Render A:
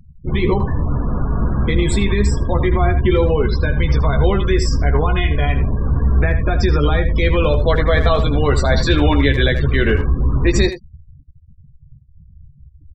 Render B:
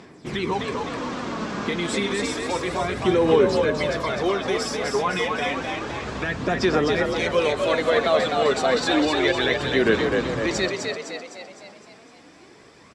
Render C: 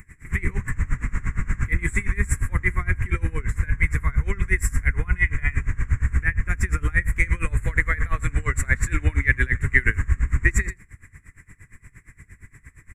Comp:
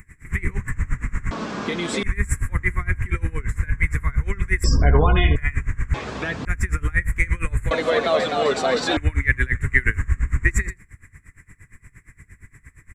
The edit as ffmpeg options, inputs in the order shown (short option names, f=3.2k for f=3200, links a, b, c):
-filter_complex "[1:a]asplit=3[a][b][c];[2:a]asplit=5[d][e][f][g][h];[d]atrim=end=1.312[i];[a]atrim=start=1.308:end=2.032[j];[e]atrim=start=2.028:end=4.642[k];[0:a]atrim=start=4.638:end=5.362[l];[f]atrim=start=5.358:end=5.942[m];[b]atrim=start=5.938:end=6.452[n];[g]atrim=start=6.448:end=7.712[o];[c]atrim=start=7.708:end=8.972[p];[h]atrim=start=8.968[q];[i][j]acrossfade=d=0.004:c1=hsin:c2=hsin[r];[r][k]acrossfade=d=0.004:c1=hsin:c2=hsin[s];[s][l]acrossfade=d=0.004:c1=hsin:c2=hsin[t];[t][m]acrossfade=d=0.004:c1=hsin:c2=hsin[u];[u][n]acrossfade=d=0.004:c1=hsin:c2=hsin[v];[v][o]acrossfade=d=0.004:c1=hsin:c2=hsin[w];[w][p]acrossfade=d=0.004:c1=hsin:c2=hsin[x];[x][q]acrossfade=d=0.004:c1=hsin:c2=hsin"